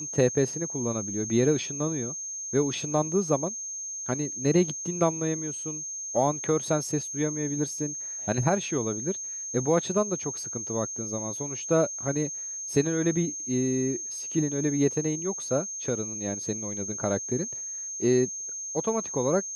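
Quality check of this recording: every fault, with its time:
whistle 6,400 Hz −33 dBFS

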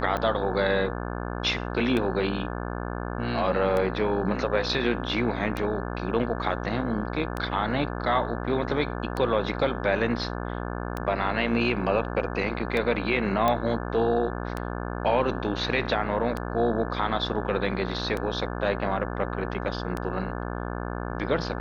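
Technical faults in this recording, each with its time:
mains buzz 60 Hz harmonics 29 −32 dBFS
scratch tick 33 1/3 rpm −16 dBFS
0:13.48: click −11 dBFS

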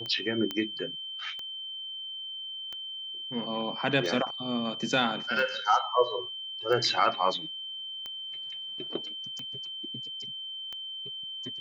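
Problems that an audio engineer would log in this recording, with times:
scratch tick 45 rpm −24 dBFS
whistle 3,100 Hz −36 dBFS
0:00.51: click −18 dBFS

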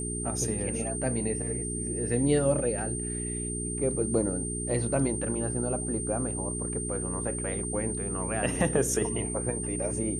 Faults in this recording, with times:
mains hum 60 Hz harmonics 7 −35 dBFS
whistle 8,800 Hz −34 dBFS

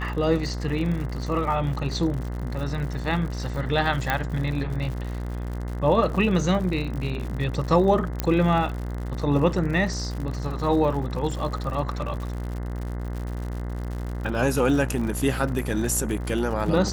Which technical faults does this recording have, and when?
mains buzz 60 Hz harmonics 35 −30 dBFS
surface crackle 98 per second −32 dBFS
0:04.10: click −9 dBFS
0:08.20: click −9 dBFS

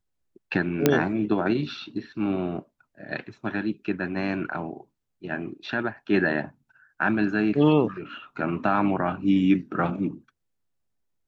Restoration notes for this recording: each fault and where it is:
0:00.86: click −4 dBFS

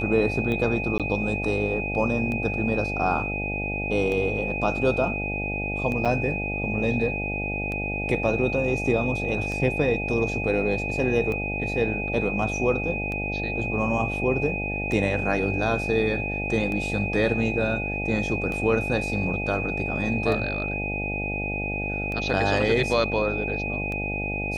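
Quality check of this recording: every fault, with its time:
mains buzz 50 Hz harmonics 17 −31 dBFS
scratch tick 33 1/3 rpm −19 dBFS
whistle 2,500 Hz −29 dBFS
0:00.98–0:01.00: drop-out 17 ms
0:06.05–0:06.06: drop-out 6.8 ms

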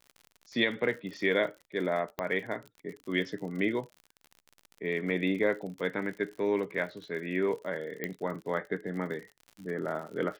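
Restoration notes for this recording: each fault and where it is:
surface crackle 60 per second −39 dBFS
0:02.19: click −18 dBFS
0:08.04: click −19 dBFS

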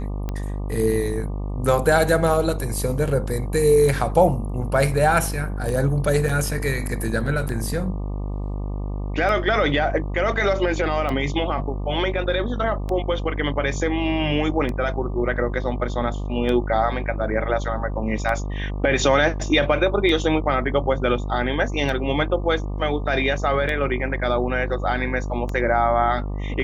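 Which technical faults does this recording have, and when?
mains buzz 50 Hz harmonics 24 −27 dBFS
scratch tick 33 1/3 rpm −15 dBFS
0:06.29: drop-out 3.9 ms

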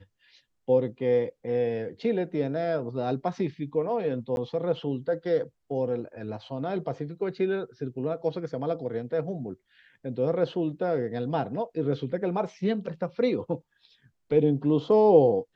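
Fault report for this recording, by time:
0:04.36–0:04.37: drop-out 11 ms

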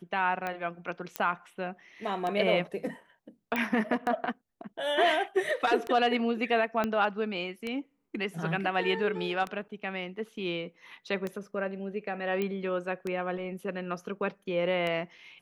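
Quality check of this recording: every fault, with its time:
scratch tick 33 1/3 rpm −20 dBFS
0:01.16: click −14 dBFS
0:03.56: click −17 dBFS
0:06.84: click −16 dBFS
0:12.42: click −19 dBFS

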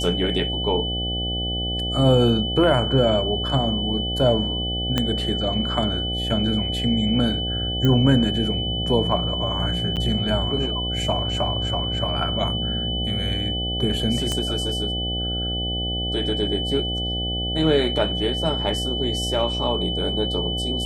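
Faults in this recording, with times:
mains buzz 60 Hz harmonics 13 −28 dBFS
whistle 3,000 Hz −26 dBFS
0:04.98: click −7 dBFS
0:07.85: click −10 dBFS
0:09.96–0:09.97: drop-out 8 ms
0:14.32: click −12 dBFS

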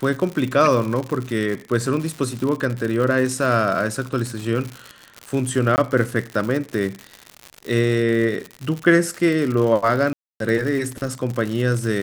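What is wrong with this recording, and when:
surface crackle 130 per second −25 dBFS
0:05.76–0:05.78: drop-out 19 ms
0:10.13–0:10.40: drop-out 272 ms

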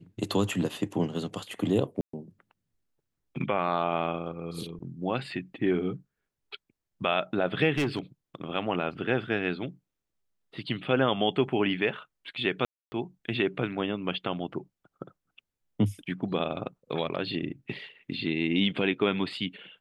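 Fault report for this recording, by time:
0:02.01–0:02.13: drop-out 124 ms
0:07.78–0:07.99: clipping −23 dBFS
0:12.65–0:12.92: drop-out 270 ms

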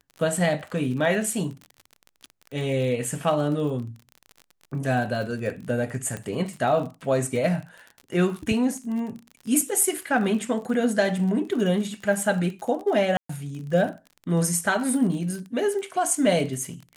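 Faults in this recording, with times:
surface crackle 38 per second −33 dBFS
0:06.17: click −19 dBFS
0:13.17–0:13.29: drop-out 124 ms

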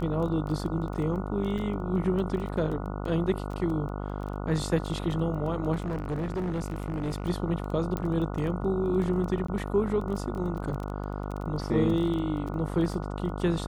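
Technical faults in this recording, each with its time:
mains buzz 50 Hz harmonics 29 −34 dBFS
surface crackle 12 per second −33 dBFS
0:01.58: drop-out 3.4 ms
0:05.74–0:07.26: clipping −26.5 dBFS
0:07.97: click −18 dBFS
0:09.47–0:09.48: drop-out 14 ms

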